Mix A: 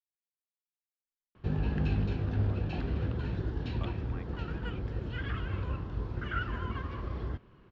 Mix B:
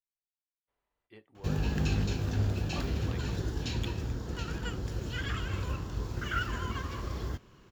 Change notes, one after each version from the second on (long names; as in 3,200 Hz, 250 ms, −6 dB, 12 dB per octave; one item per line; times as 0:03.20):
speech: entry −1.05 s
master: remove high-frequency loss of the air 360 metres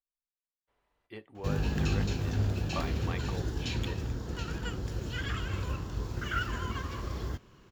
speech +8.5 dB